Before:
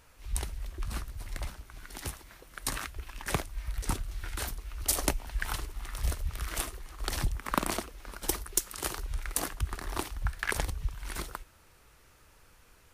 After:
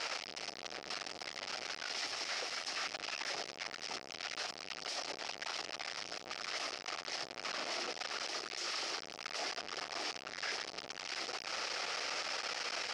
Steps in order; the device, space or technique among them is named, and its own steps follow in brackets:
mains-hum notches 50/100/150/200/250/300/350/400/450 Hz
0:01.95–0:02.81: high-shelf EQ 4,700 Hz +6 dB
home computer beeper (sign of each sample alone; loudspeaker in its box 580–5,300 Hz, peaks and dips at 720 Hz +3 dB, 1,000 Hz −8 dB, 1,600 Hz −4 dB, 3,600 Hz −4 dB, 5,200 Hz +7 dB)
level +1.5 dB

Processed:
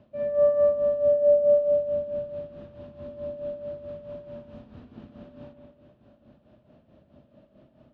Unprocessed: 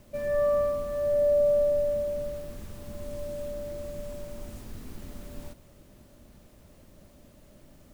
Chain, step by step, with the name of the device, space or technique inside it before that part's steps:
combo amplifier with spring reverb and tremolo (spring reverb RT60 1.3 s, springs 60 ms, chirp 80 ms, DRR 3 dB; amplitude tremolo 4.6 Hz, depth 67%; loudspeaker in its box 82–3,400 Hz, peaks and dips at 130 Hz +5 dB, 240 Hz +5 dB, 630 Hz +7 dB, 2,100 Hz −8 dB)
level −2.5 dB

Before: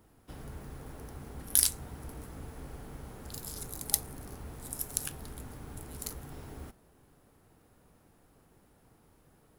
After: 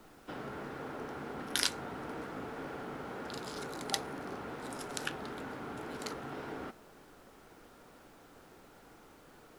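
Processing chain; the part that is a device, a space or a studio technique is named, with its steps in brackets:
horn gramophone (band-pass filter 260–3,300 Hz; parametric band 1,400 Hz +5.5 dB 0.22 octaves; tape wow and flutter; pink noise bed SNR 21 dB)
level +8.5 dB

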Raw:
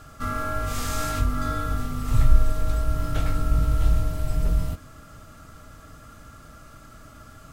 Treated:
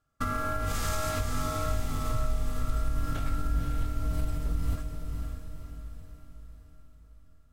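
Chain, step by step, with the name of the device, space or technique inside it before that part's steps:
noise gate −35 dBFS, range −36 dB
serial compression, peaks first (downward compressor, threshold −26 dBFS, peak gain reduction 17 dB; downward compressor 2.5 to 1, threshold −33 dBFS, peak gain reduction 7 dB)
feedback delay with all-pass diffusion 517 ms, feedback 50%, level −5 dB
level +4.5 dB

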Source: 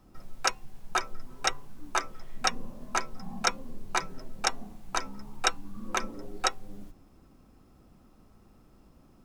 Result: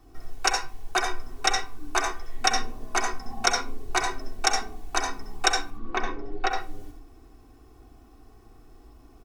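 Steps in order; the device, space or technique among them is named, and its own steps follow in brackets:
0:05.70–0:06.51: high-frequency loss of the air 240 metres
microphone above a desk (comb filter 2.7 ms, depth 88%; convolution reverb RT60 0.30 s, pre-delay 62 ms, DRR 2.5 dB)
level +1.5 dB

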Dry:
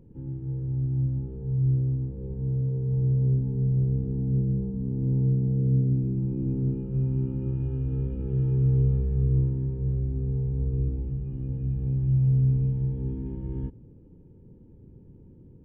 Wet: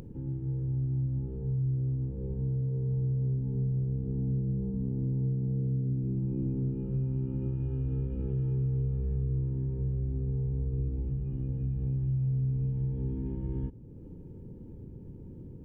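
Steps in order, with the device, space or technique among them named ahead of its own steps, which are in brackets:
upward and downward compression (upward compression, threshold −37 dBFS; downward compressor 4 to 1, threshold −28 dBFS, peak gain reduction 8.5 dB)

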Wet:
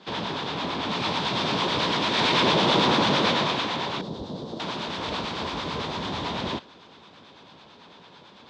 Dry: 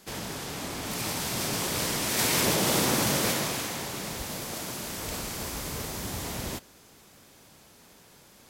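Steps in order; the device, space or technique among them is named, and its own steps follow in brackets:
0:04.01–0:04.60: drawn EQ curve 430 Hz 0 dB, 2,400 Hz −24 dB, 3,800 Hz −10 dB
guitar amplifier with harmonic tremolo (two-band tremolo in antiphase 9 Hz, depth 50%, crossover 730 Hz; soft clipping −20 dBFS, distortion −20 dB; loudspeaker in its box 110–4,100 Hz, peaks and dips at 120 Hz −4 dB, 990 Hz +7 dB, 2,000 Hz −3 dB, 3,600 Hz +7 dB)
level +8.5 dB

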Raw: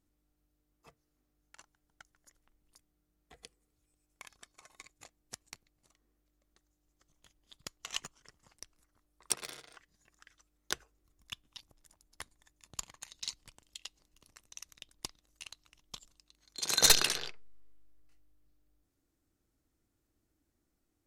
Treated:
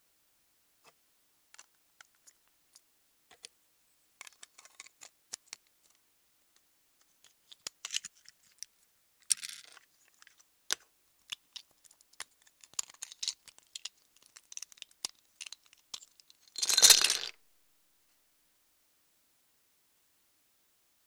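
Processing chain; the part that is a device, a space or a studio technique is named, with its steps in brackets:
0:07.87–0:09.65: elliptic band-stop filter 220–1,500 Hz
high-frequency loss of the air 56 metres
turntable without a phono preamp (RIAA equalisation recording; white noise bed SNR 33 dB)
level −1.5 dB

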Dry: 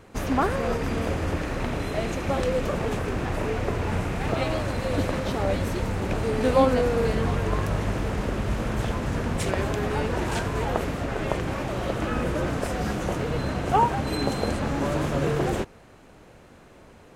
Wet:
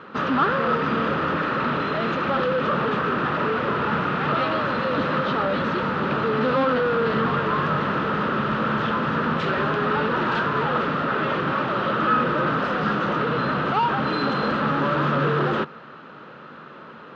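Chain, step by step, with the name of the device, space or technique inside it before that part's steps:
overdrive pedal into a guitar cabinet (mid-hump overdrive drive 26 dB, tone 3,700 Hz, clips at −6.5 dBFS; loudspeaker in its box 95–3,800 Hz, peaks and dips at 99 Hz −5 dB, 150 Hz +10 dB, 220 Hz +6 dB, 720 Hz −8 dB, 1,300 Hz +10 dB, 2,200 Hz −8 dB)
level −7.5 dB

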